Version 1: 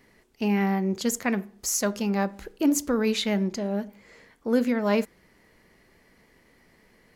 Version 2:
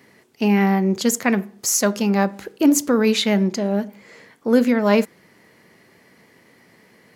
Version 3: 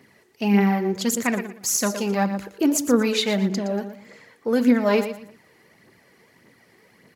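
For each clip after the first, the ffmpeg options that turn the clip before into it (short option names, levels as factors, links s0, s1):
-af "highpass=f=100:w=0.5412,highpass=f=100:w=1.3066,volume=2.24"
-af "aecho=1:1:117|234|351:0.282|0.0761|0.0205,aphaser=in_gain=1:out_gain=1:delay=2.8:decay=0.45:speed=1.7:type=triangular,volume=0.631"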